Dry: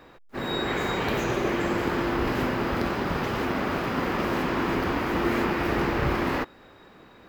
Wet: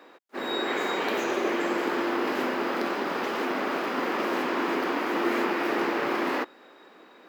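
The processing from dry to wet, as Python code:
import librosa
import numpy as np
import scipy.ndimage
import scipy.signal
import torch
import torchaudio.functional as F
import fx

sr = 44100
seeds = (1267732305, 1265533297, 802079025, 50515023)

y = scipy.signal.sosfilt(scipy.signal.butter(4, 260.0, 'highpass', fs=sr, output='sos'), x)
y = fx.high_shelf(y, sr, hz=11000.0, db=-3.0)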